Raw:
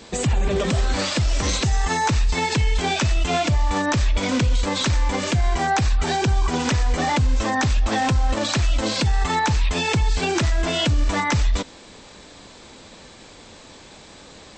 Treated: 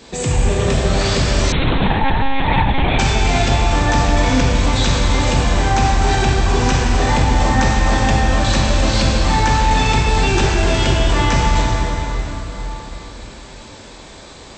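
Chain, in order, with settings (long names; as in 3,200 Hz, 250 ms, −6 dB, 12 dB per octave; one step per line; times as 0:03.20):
dense smooth reverb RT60 4.5 s, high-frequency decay 0.65×, DRR −5 dB
0:01.52–0:02.99: one-pitch LPC vocoder at 8 kHz 270 Hz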